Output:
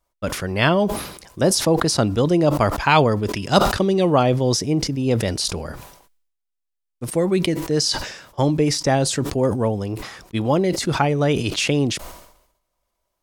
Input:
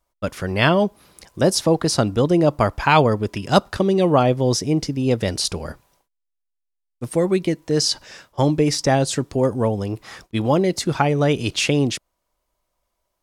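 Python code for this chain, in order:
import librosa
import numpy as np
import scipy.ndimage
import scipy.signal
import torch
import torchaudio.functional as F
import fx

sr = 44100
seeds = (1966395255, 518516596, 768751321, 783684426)

y = fx.peak_eq(x, sr, hz=4900.0, db=3.0, octaves=2.0, at=(2.1, 4.55))
y = fx.sustainer(y, sr, db_per_s=72.0)
y = F.gain(torch.from_numpy(y), -1.0).numpy()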